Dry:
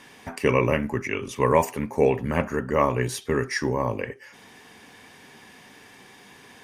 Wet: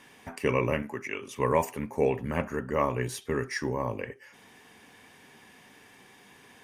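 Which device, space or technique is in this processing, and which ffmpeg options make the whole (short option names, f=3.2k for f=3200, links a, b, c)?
exciter from parts: -filter_complex "[0:a]asettb=1/sr,asplit=3[a][b][c];[a]atrim=end=0.824[d];[b]atrim=start=0.82:end=1.36,asetpts=PTS-STARTPTS,afade=t=in:d=0.004:c=qsin,afade=t=out:st=0.536:d=0.004:c=qsin,highpass=f=360:p=1[e];[c]atrim=start=1.356[f];[d][e]acrossfade=d=0.004:c1=hsin:c2=qsin[g];[g][f]acrossfade=d=0.004:c1=qsin:c2=hsin,asplit=2[h][i];[i]highpass=3.5k,asoftclip=type=tanh:threshold=-37dB,highpass=f=3k:w=0.5412,highpass=f=3k:w=1.3066,volume=-11dB[j];[h][j]amix=inputs=2:normalize=0,volume=-5.5dB"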